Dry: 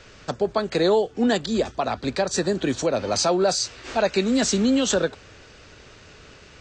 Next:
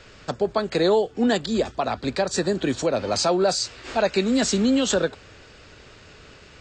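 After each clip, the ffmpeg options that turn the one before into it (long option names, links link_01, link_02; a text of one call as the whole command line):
ffmpeg -i in.wav -af "bandreject=frequency=6000:width=12" out.wav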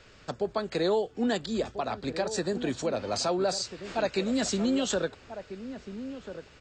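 ffmpeg -i in.wav -filter_complex "[0:a]asplit=2[link_01][link_02];[link_02]adelay=1341,volume=-11dB,highshelf=frequency=4000:gain=-30.2[link_03];[link_01][link_03]amix=inputs=2:normalize=0,volume=-7dB" out.wav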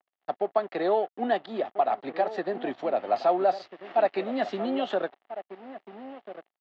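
ffmpeg -i in.wav -af "aeval=exprs='sgn(val(0))*max(abs(val(0))-0.00531,0)':channel_layout=same,highpass=440,equalizer=frequency=480:width_type=q:width=4:gain=-7,equalizer=frequency=730:width_type=q:width=4:gain=7,equalizer=frequency=1000:width_type=q:width=4:gain=-5,equalizer=frequency=1500:width_type=q:width=4:gain=-8,equalizer=frequency=2400:width_type=q:width=4:gain=-8,lowpass=frequency=2600:width=0.5412,lowpass=frequency=2600:width=1.3066,volume=7dB" out.wav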